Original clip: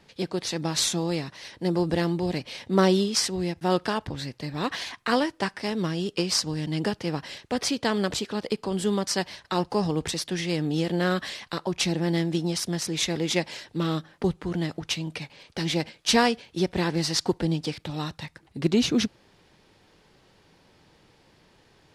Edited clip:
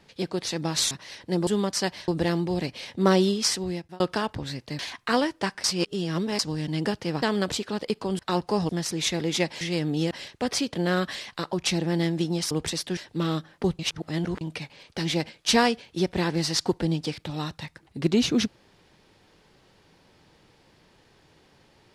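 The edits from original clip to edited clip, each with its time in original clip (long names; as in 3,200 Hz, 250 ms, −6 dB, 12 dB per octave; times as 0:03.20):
0:00.91–0:01.24: remove
0:03.20–0:03.72: fade out equal-power
0:04.51–0:04.78: remove
0:05.63–0:06.38: reverse
0:07.21–0:07.84: move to 0:10.88
0:08.81–0:09.42: move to 0:01.80
0:09.92–0:10.38: swap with 0:12.65–0:13.57
0:14.39–0:15.01: reverse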